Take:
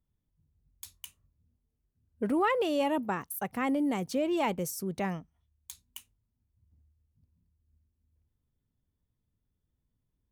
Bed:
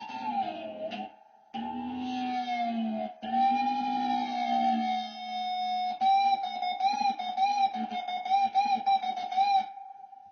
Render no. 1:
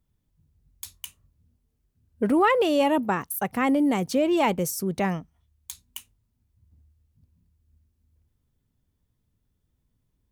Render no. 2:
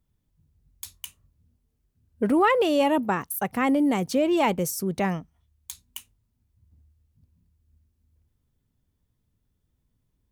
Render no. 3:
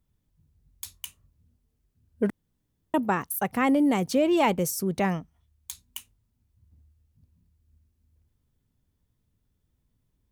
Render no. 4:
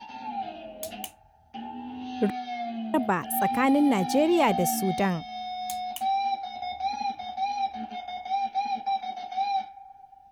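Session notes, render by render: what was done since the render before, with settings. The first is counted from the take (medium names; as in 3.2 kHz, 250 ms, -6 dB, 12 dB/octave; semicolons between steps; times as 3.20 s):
trim +7 dB
no audible change
2.30–2.94 s: room tone
add bed -2.5 dB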